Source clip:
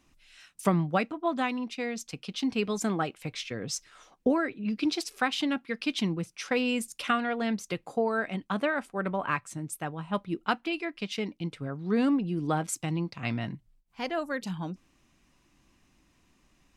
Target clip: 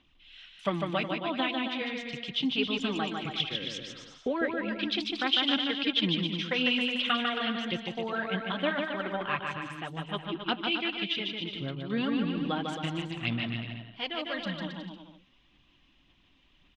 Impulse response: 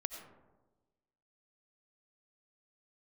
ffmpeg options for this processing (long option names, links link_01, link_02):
-af "aphaser=in_gain=1:out_gain=1:delay=3.8:decay=0.48:speed=1.8:type=sinusoidal,lowpass=frequency=3300:width_type=q:width=5.7,aecho=1:1:150|270|366|442.8|504.2:0.631|0.398|0.251|0.158|0.1,volume=-6dB"